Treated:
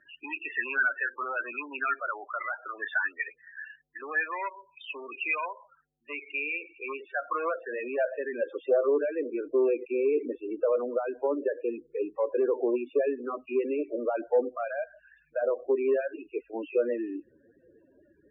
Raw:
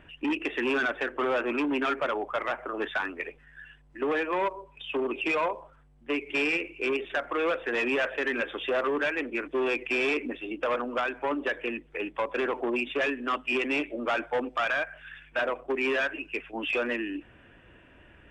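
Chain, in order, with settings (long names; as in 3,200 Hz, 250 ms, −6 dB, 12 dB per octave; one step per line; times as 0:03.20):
spectral peaks only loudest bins 16
band-pass filter sweep 1,800 Hz → 460 Hz, 0:05.97–0:09.00
level +6.5 dB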